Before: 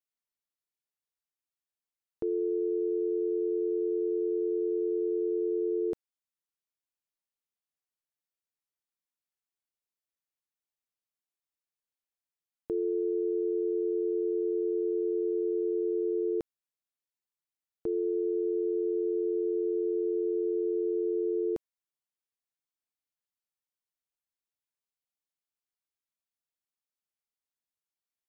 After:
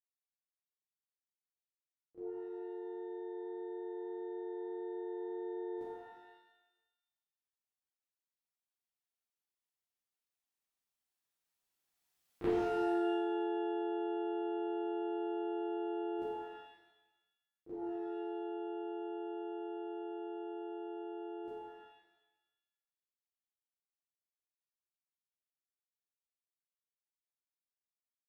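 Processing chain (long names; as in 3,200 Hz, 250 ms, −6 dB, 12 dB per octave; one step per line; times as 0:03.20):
source passing by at 0:12.54, 7 m/s, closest 1.8 metres
downward compressor 10 to 1, threshold −50 dBFS, peak gain reduction 22 dB
on a send: backwards echo 31 ms −11 dB
on the sum: reverb with rising layers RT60 1 s, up +12 semitones, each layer −8 dB, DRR −10.5 dB
level +7.5 dB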